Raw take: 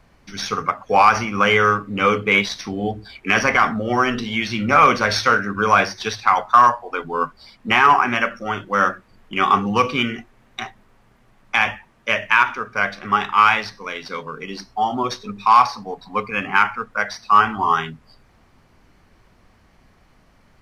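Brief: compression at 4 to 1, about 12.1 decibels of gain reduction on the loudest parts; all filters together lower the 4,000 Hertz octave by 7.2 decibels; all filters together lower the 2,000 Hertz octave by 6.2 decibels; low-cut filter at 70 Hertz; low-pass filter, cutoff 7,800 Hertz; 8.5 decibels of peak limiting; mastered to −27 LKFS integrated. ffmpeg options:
ffmpeg -i in.wav -af "highpass=70,lowpass=7800,equalizer=frequency=2000:width_type=o:gain=-7,equalizer=frequency=4000:width_type=o:gain=-7,acompressor=threshold=-25dB:ratio=4,volume=4dB,alimiter=limit=-14.5dB:level=0:latency=1" out.wav

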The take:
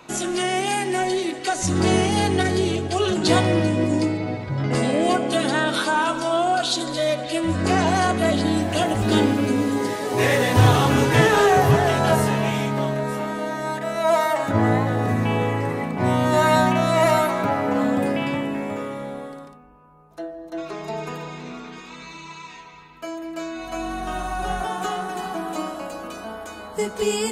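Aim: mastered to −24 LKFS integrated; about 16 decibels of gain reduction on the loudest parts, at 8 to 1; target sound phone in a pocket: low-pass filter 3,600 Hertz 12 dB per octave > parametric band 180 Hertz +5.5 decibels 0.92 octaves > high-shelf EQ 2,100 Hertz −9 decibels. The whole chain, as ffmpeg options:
ffmpeg -i in.wav -af "acompressor=threshold=-27dB:ratio=8,lowpass=3600,equalizer=frequency=180:width_type=o:width=0.92:gain=5.5,highshelf=frequency=2100:gain=-9,volume=6.5dB" out.wav

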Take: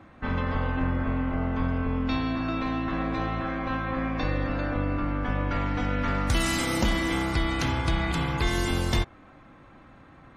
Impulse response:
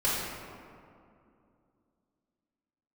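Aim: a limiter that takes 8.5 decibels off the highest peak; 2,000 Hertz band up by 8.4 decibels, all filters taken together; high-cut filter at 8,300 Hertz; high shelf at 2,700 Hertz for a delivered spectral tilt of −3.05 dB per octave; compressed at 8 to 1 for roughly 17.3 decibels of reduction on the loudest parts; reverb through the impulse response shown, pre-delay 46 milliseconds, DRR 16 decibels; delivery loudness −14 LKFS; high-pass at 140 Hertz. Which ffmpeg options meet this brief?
-filter_complex "[0:a]highpass=140,lowpass=8300,equalizer=frequency=2000:width_type=o:gain=8.5,highshelf=frequency=2700:gain=3.5,acompressor=threshold=-38dB:ratio=8,alimiter=level_in=9dB:limit=-24dB:level=0:latency=1,volume=-9dB,asplit=2[link_01][link_02];[1:a]atrim=start_sample=2205,adelay=46[link_03];[link_02][link_03]afir=irnorm=-1:irlink=0,volume=-27dB[link_04];[link_01][link_04]amix=inputs=2:normalize=0,volume=27.5dB"

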